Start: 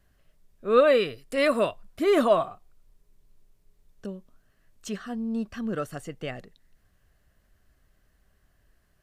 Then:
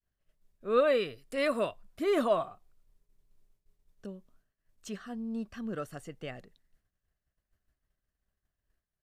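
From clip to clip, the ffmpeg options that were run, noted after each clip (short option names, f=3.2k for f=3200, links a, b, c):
-af "agate=range=-33dB:threshold=-54dB:ratio=3:detection=peak,volume=-6.5dB"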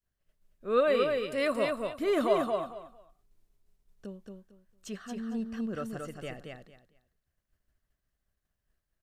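-af "aecho=1:1:226|452|678:0.631|0.133|0.0278"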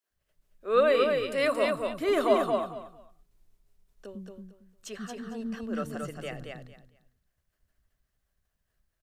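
-filter_complex "[0:a]acrossover=split=280[a][b];[a]adelay=100[c];[c][b]amix=inputs=2:normalize=0,volume=3.5dB"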